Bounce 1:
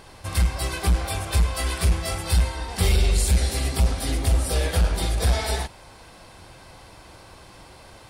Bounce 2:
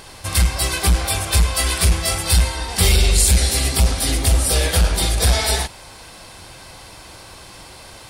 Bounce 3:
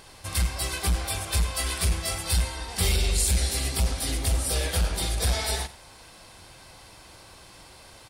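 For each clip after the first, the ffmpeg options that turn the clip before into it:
-af "highshelf=f=2.4k:g=8,volume=4dB"
-af "aecho=1:1:89:0.133,volume=-9dB"

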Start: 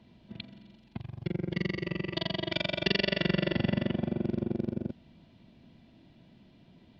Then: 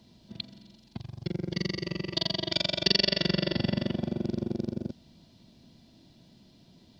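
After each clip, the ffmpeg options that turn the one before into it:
-af "highshelf=f=3.6k:t=q:w=1.5:g=12"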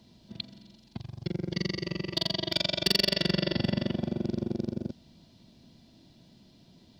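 -af "volume=15.5dB,asoftclip=hard,volume=-15.5dB"

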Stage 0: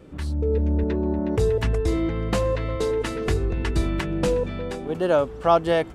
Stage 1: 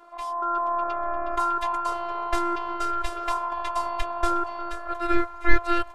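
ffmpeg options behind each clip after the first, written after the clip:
-af "aeval=exprs='val(0)*sin(2*PI*910*n/s)':c=same,afftfilt=real='hypot(re,im)*cos(PI*b)':imag='0':win_size=512:overlap=0.75,asubboost=boost=11:cutoff=58,volume=2.5dB"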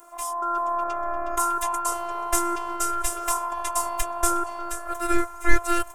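-af "aexciter=amount=11.6:drive=4.8:freq=6.2k"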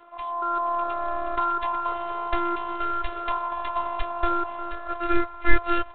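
-ar 8000 -c:a adpcm_g726 -b:a 32k

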